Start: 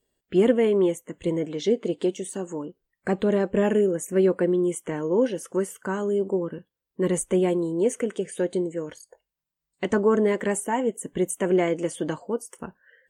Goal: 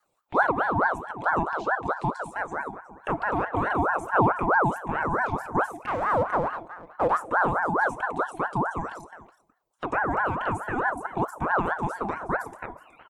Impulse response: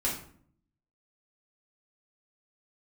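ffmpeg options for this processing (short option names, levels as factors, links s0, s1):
-filter_complex "[0:a]asettb=1/sr,asplit=3[s0][s1][s2];[s0]atrim=end=0.814[s3];[s1]atrim=start=0.81:end=1.34,asetpts=PTS-STARTPTS,afade=t=in:d=0.004:c=qsin,afade=t=out:st=0.526:d=0.004:c=qsin,highshelf=f=5000:g=-11[s4];[s2]atrim=start=1.336[s5];[s3][s4]acrossfade=d=0.004:c1=hsin:c2=qsin[s6];[s6][s5]acrossfade=d=0.004:c1=qsin:c2=hsin,acrossover=split=290|1500[s7][s8][s9];[s8]alimiter=limit=0.075:level=0:latency=1[s10];[s9]acompressor=threshold=0.00224:ratio=5[s11];[s7][s10][s11]amix=inputs=3:normalize=0,asettb=1/sr,asplit=3[s12][s13][s14];[s12]atrim=end=5.764[s15];[s13]atrim=start=5.76:end=7.31,asetpts=PTS-STARTPTS,afade=t=in:d=0.004:c=qsin,afade=t=out:st=1.546:d=0.004:c=qsin,aeval=exprs='clip(val(0),-1,0.0237)':c=same[s16];[s14]atrim=start=7.306[s17];[s15][s16]acrossfade=d=0.004:c1=hsin:c2=qsin[s18];[s18][s17]acrossfade=d=0.004:c1=qsin:c2=hsin,aecho=1:1:370:0.158,aphaser=in_gain=1:out_gain=1:delay=3.8:decay=0.27:speed=0.73:type=sinusoidal,asplit=2[s19][s20];[1:a]atrim=start_sample=2205,asetrate=32634,aresample=44100,lowshelf=f=250:g=10.5[s21];[s20][s21]afir=irnorm=-1:irlink=0,volume=0.0841[s22];[s19][s22]amix=inputs=2:normalize=0,aeval=exprs='val(0)*sin(2*PI*880*n/s+880*0.45/4.6*sin(2*PI*4.6*n/s))':c=same,volume=1.12"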